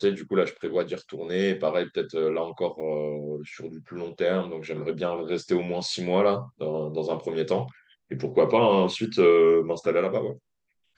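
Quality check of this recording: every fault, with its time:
2.80 s: dropout 4.1 ms

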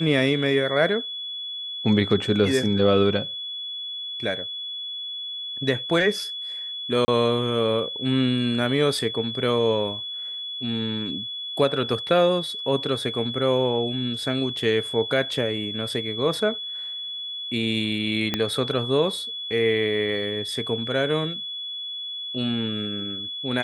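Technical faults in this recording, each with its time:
whine 3.4 kHz -30 dBFS
7.05–7.08 s: dropout 30 ms
18.34 s: pop -9 dBFS

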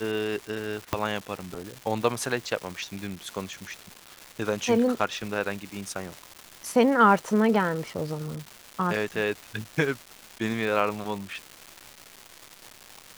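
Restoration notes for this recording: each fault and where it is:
crackle 570 per s -33 dBFS
0.93 s: pop -10 dBFS

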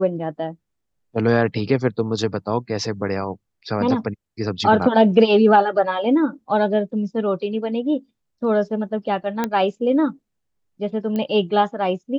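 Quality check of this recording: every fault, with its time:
9.44 s: pop -8 dBFS
11.16 s: pop -14 dBFS

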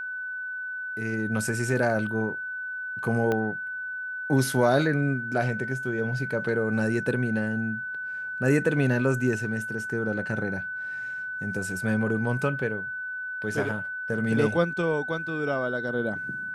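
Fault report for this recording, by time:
whine 1.5 kHz -31 dBFS
3.32 s: pop -15 dBFS

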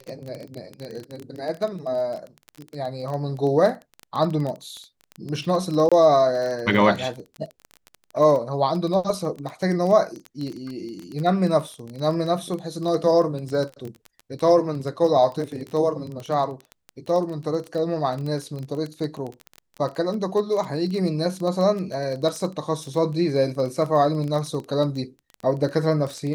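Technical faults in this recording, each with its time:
crackle 17 per s -27 dBFS
5.89–5.92 s: dropout 26 ms

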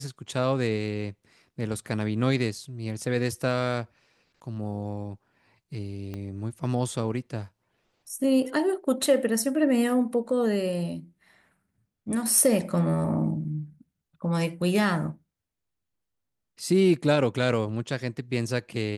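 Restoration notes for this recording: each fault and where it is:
6.14 s: pop -23 dBFS

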